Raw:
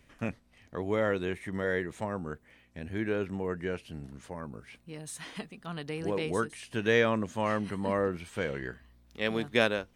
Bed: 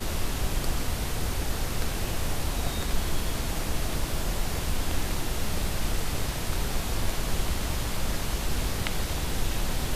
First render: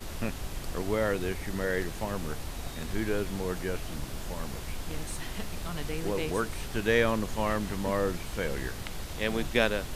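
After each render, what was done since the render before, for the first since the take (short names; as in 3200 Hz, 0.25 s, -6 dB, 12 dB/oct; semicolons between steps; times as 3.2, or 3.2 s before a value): add bed -9 dB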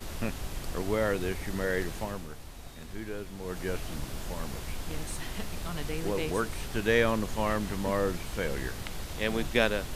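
1.96–3.7 dip -8 dB, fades 0.32 s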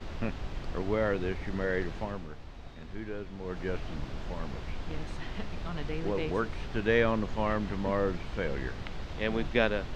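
air absorption 190 m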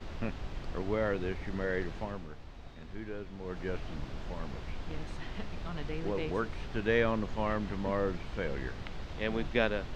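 gain -2.5 dB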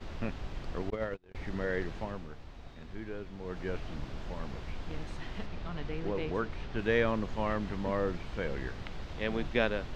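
0.9–1.35 gate -30 dBFS, range -37 dB; 5.46–6.79 air absorption 59 m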